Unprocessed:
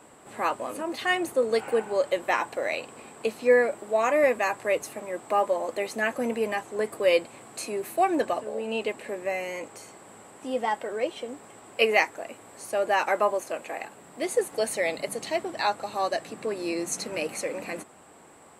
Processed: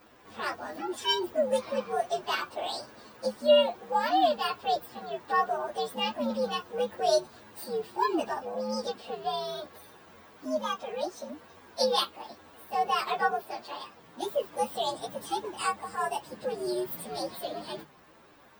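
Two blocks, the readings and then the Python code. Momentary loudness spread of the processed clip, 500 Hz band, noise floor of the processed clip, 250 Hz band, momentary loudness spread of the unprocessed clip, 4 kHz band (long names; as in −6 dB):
15 LU, −4.0 dB, −56 dBFS, −3.5 dB, 15 LU, +3.5 dB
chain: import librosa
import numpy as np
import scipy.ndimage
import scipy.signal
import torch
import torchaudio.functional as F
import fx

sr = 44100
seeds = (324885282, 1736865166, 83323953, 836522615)

y = fx.partial_stretch(x, sr, pct=126)
y = fx.dynamic_eq(y, sr, hz=2000.0, q=2.7, threshold_db=-47.0, ratio=4.0, max_db=-5)
y = fx.hum_notches(y, sr, base_hz=50, count=4)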